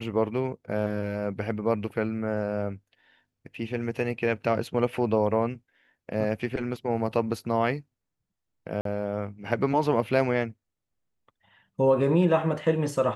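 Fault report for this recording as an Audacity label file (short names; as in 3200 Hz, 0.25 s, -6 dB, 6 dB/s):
8.810000	8.850000	gap 43 ms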